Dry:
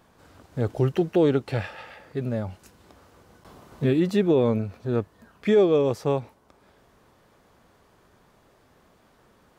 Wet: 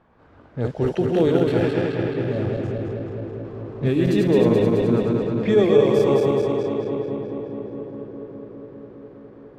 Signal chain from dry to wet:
feedback delay that plays each chunk backwards 107 ms, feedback 84%, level −2.5 dB
low-pass that shuts in the quiet parts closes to 2,000 Hz, open at −15 dBFS
delay with a low-pass on its return 410 ms, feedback 73%, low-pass 480 Hz, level −9 dB

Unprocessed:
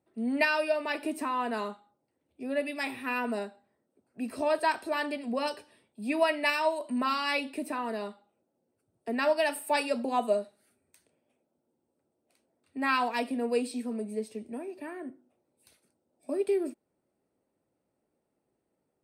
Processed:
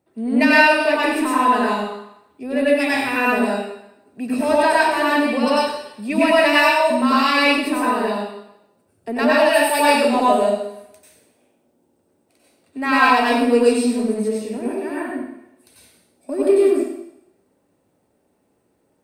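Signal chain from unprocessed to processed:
in parallel at −9 dB: soft clipping −31.5 dBFS, distortion −7 dB
on the sum: convolution reverb RT60 0.80 s, pre-delay 88 ms, DRR −7 dB
level +4.5 dB

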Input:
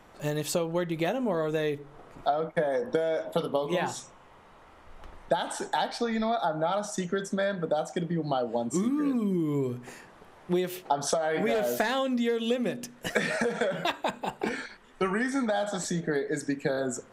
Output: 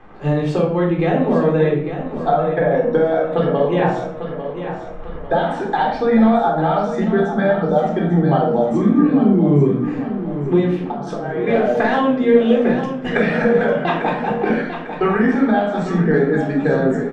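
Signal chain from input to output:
low-pass filter 2,200 Hz 12 dB per octave
0:10.64–0:11.47: downward compressor, threshold −34 dBFS, peak gain reduction 13 dB
repeating echo 848 ms, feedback 43%, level −10 dB
rectangular room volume 950 cubic metres, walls furnished, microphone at 3.8 metres
level +5.5 dB

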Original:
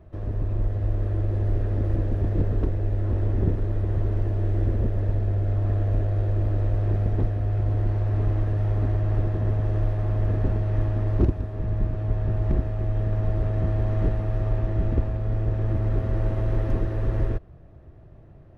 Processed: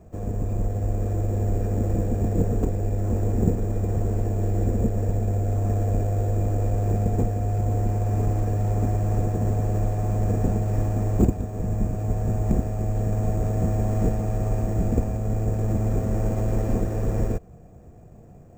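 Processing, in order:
bad sample-rate conversion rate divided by 6×, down none, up hold
hollow resonant body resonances 210/470/720/2,400 Hz, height 11 dB, ringing for 40 ms
level −1.5 dB

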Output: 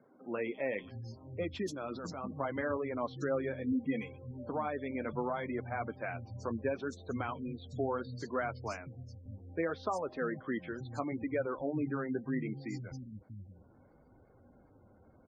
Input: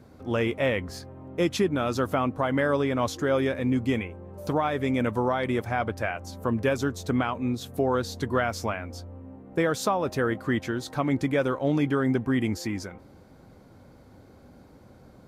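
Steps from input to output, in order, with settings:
0:01.74–0:02.33: compressor whose output falls as the input rises −30 dBFS, ratio −1
0:03.66–0:04.27: comb filter 4 ms, depth 54%
three-band delay without the direct sound mids, highs, lows 130/640 ms, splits 170/4,100 Hz
flanger 0.7 Hz, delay 1.3 ms, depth 9.4 ms, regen −45%
gate on every frequency bin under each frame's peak −25 dB strong
0:08.42–0:09.26: multiband upward and downward expander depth 40%
level −5.5 dB

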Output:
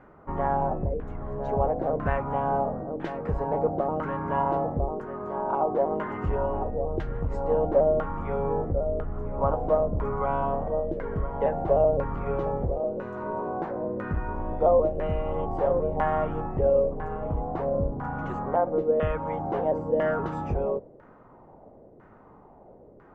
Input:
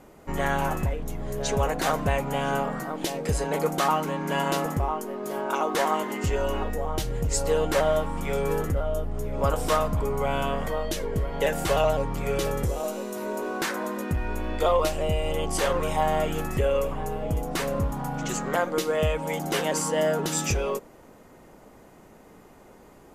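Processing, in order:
sub-octave generator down 1 octave, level −4 dB
auto-filter low-pass saw down 1 Hz 470–1,600 Hz
level −3.5 dB

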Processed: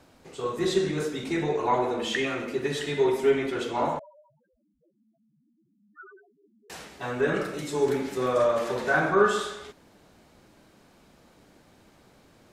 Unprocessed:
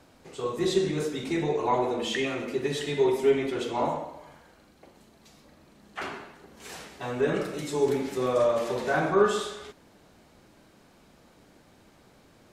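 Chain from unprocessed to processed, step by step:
dynamic equaliser 1,500 Hz, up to +6 dB, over −46 dBFS, Q 2
0:03.99–0:06.70: spectral peaks only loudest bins 1

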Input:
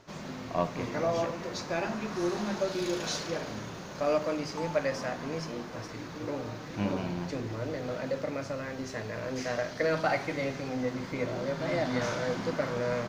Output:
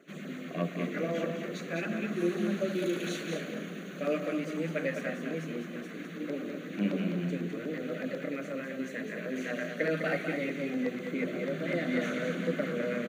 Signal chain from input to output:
phaser with its sweep stopped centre 2,200 Hz, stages 4
auto-filter notch saw down 8.1 Hz 320–3,900 Hz
elliptic high-pass filter 170 Hz, stop band 50 dB
single-tap delay 205 ms −6 dB
level +3.5 dB

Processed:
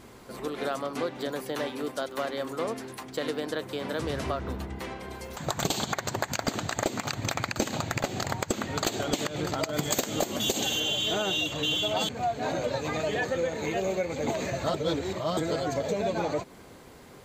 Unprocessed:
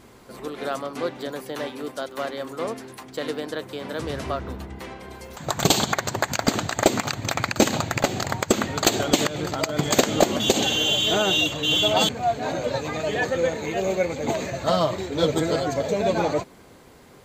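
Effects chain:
0:09.73–0:10.80: high-shelf EQ 7,700 Hz +12 dB
downward compressor 4 to 1, threshold −26 dBFS, peak gain reduction 13 dB
0:14.74–0:15.37: reverse

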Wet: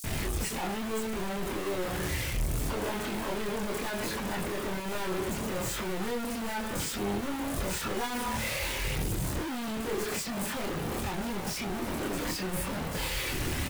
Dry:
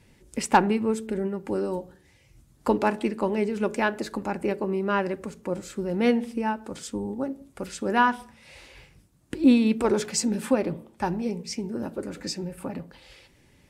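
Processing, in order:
sign of each sample alone
multi-voice chorus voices 6, 0.26 Hz, delay 26 ms, depth 1.7 ms
multiband delay without the direct sound highs, lows 40 ms, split 5,400 Hz
level −2.5 dB

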